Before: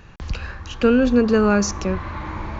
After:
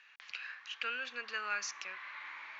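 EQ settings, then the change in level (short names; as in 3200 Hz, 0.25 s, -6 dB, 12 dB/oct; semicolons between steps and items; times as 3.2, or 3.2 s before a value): ladder band-pass 2600 Hz, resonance 35%; +3.5 dB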